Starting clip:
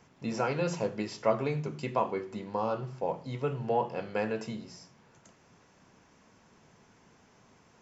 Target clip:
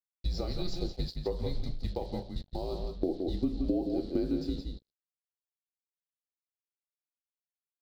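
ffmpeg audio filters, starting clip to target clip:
-filter_complex "[0:a]afreqshift=-170,asetnsamples=n=441:p=0,asendcmd='3.03 equalizer g 5.5',equalizer=f=290:t=o:w=1.1:g=-12.5,agate=range=0.224:threshold=0.0126:ratio=16:detection=peak,acrusher=bits=7:mix=0:aa=0.5,asplit=2[s0][s1];[s1]adelay=169.1,volume=0.447,highshelf=f=4000:g=-3.8[s2];[s0][s2]amix=inputs=2:normalize=0,acompressor=threshold=0.0224:ratio=5,firequalizer=gain_entry='entry(470,0);entry(1000,-18);entry(2500,-18);entry(4100,8);entry(6300,-13)':delay=0.05:min_phase=1,volume=2"

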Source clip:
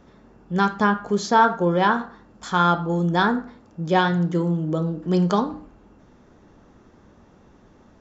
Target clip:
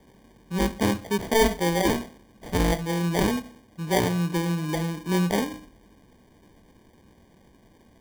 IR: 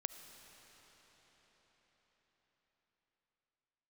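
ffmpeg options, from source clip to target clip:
-filter_complex "[0:a]bandreject=f=1200:w=15,acrossover=split=160[s0][s1];[s1]acrusher=samples=33:mix=1:aa=0.000001[s2];[s0][s2]amix=inputs=2:normalize=0,volume=0.668"

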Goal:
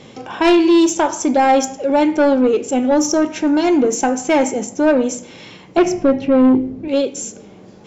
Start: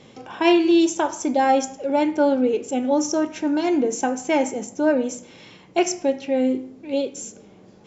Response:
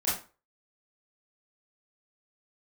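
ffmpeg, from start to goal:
-filter_complex "[0:a]asettb=1/sr,asplit=3[s0][s1][s2];[s0]atrim=end=5.774[s3];[s1]atrim=start=5.77:end=6.88,asetpts=PTS-STARTPTS,afade=t=in:d=0.004:c=qsin,afade=t=out:st=1.106:d=0.004:c=qsin,aemphasis=mode=reproduction:type=riaa[s4];[s2]atrim=start=6.876[s5];[s3][s4]acrossfade=d=0.004:c1=hsin:c2=qsin[s6];[s6][s5]acrossfade=d=0.004:c1=qsin:c2=hsin,asoftclip=type=tanh:threshold=0.2,volume=2.37"

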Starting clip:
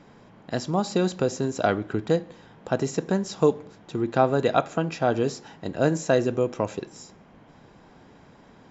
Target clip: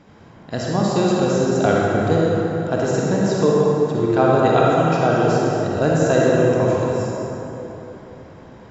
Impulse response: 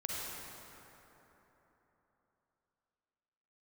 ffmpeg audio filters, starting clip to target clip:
-filter_complex "[0:a]equalizer=f=84:w=1.8:g=6[s0];[1:a]atrim=start_sample=2205[s1];[s0][s1]afir=irnorm=-1:irlink=0,volume=1.58"

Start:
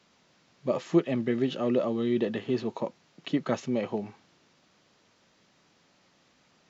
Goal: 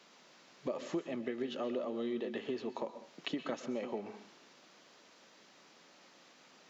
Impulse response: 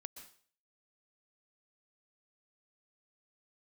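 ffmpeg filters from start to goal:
-filter_complex "[0:a]highpass=270,acompressor=threshold=0.00891:ratio=4,asplit=2[s0][s1];[1:a]atrim=start_sample=2205[s2];[s1][s2]afir=irnorm=-1:irlink=0,volume=3.55[s3];[s0][s3]amix=inputs=2:normalize=0,volume=0.562"

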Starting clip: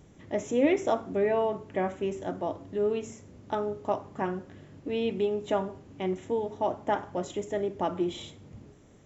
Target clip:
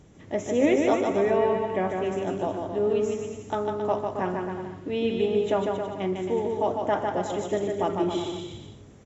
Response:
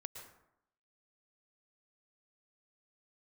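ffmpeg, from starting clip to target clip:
-filter_complex "[0:a]aecho=1:1:150|270|366|442.8|504.2:0.631|0.398|0.251|0.158|0.1,asplit=2[s0][s1];[1:a]atrim=start_sample=2205,asetrate=38808,aresample=44100[s2];[s1][s2]afir=irnorm=-1:irlink=0,volume=0.501[s3];[s0][s3]amix=inputs=2:normalize=0" -ar 22050 -c:a libmp3lame -b:a 56k

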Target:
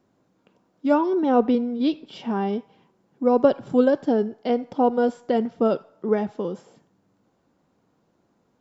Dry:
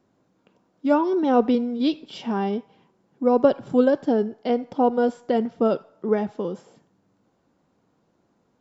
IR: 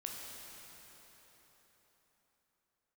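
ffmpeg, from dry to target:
-filter_complex "[0:a]asettb=1/sr,asplit=3[s0][s1][s2];[s0]atrim=end=1.064[s3];[s1]atrim=start=1.06:end=2.49,asetpts=PTS-STARTPTS,afade=t=in:d=0.004:c=qsin,afade=t=out:st=1.426:d=0.004:c=qsin,highshelf=f=3800:g=-7[s4];[s2]atrim=start=2.486[s5];[s3][s4]acrossfade=d=0.004:c1=hsin:c2=qsin[s6];[s6][s5]acrossfade=d=0.004:c1=qsin:c2=hsin"

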